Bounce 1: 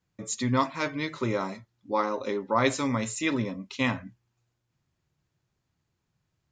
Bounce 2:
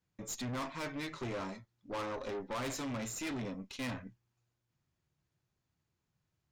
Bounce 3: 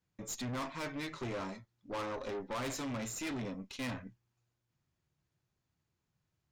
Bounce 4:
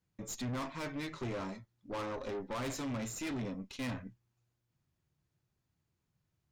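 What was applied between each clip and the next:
tube stage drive 33 dB, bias 0.6; gain -2.5 dB
nothing audible
low shelf 380 Hz +4 dB; gain -1.5 dB

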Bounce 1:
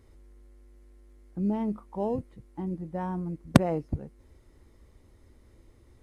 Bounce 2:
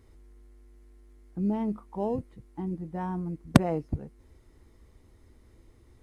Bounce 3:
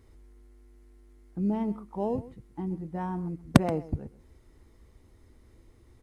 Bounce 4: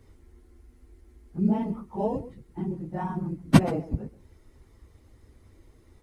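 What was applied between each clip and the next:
notch 560 Hz, Q 12
outdoor echo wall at 22 m, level -17 dB
phase scrambler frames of 50 ms; gain +2 dB

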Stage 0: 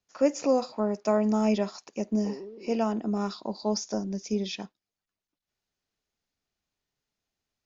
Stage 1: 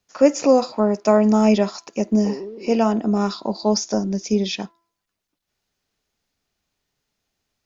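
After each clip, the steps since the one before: de-hum 336 Hz, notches 6; gain +9 dB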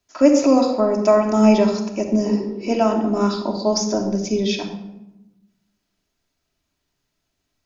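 shoebox room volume 3400 m³, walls furnished, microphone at 2.9 m; gain -1 dB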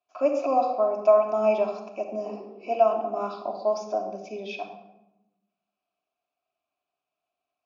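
vowel filter a; gain +4 dB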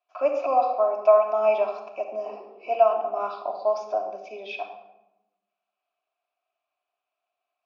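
BPF 580–3500 Hz; gain +3.5 dB

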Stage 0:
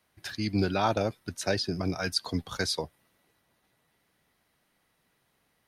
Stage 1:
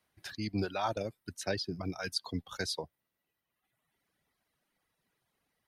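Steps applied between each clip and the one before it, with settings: reverb removal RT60 1.3 s; gain -5.5 dB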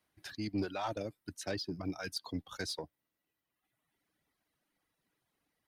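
soft clip -26 dBFS, distortion -17 dB; bell 300 Hz +7 dB 0.27 oct; gain -2.5 dB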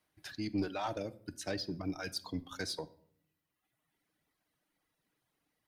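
shoebox room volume 1000 m³, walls furnished, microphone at 0.5 m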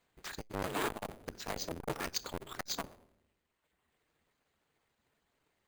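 cycle switcher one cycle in 2, inverted; careless resampling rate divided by 4×, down filtered, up hold; core saturation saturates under 770 Hz; gain +4.5 dB

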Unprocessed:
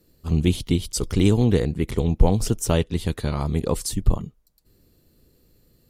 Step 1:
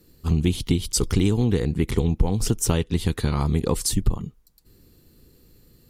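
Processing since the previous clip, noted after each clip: bell 610 Hz -8 dB 0.35 oct; compressor 4:1, threshold -22 dBFS, peak gain reduction 11.5 dB; gain +5 dB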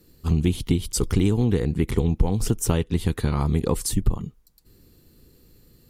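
dynamic EQ 4900 Hz, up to -5 dB, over -43 dBFS, Q 0.77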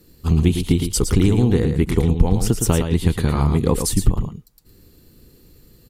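echo 0.112 s -7 dB; gain +4 dB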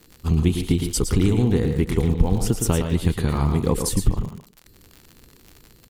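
speakerphone echo 0.15 s, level -10 dB; crackle 80/s -29 dBFS; gain -3 dB

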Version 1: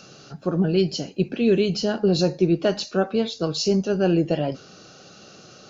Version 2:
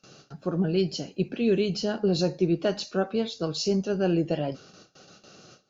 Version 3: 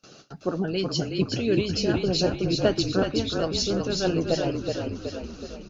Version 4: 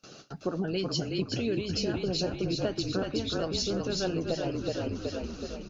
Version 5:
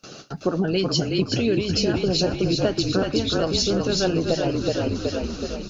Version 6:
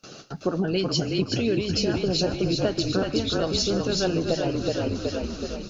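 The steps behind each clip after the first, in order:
gate with hold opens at -36 dBFS; gain -4.5 dB
frequency-shifting echo 0.372 s, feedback 57%, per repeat -33 Hz, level -4 dB; harmonic-percussive split harmonic -10 dB; gain +5.5 dB
compressor 5:1, threshold -27 dBFS, peak gain reduction 10.5 dB
thin delay 0.341 s, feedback 84%, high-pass 2800 Hz, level -20 dB; gain +8.5 dB
reverb RT60 0.50 s, pre-delay 0.105 s, DRR 18.5 dB; gain -2.5 dB

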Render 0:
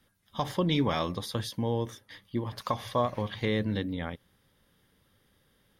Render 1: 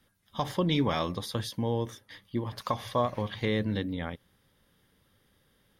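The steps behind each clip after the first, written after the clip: nothing audible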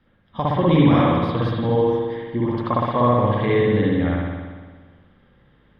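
air absorption 400 m; spring tank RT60 1.5 s, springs 58 ms, chirp 25 ms, DRR -5.5 dB; gain +6.5 dB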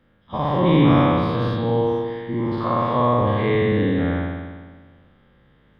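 spectral dilation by 0.12 s; gain -4.5 dB

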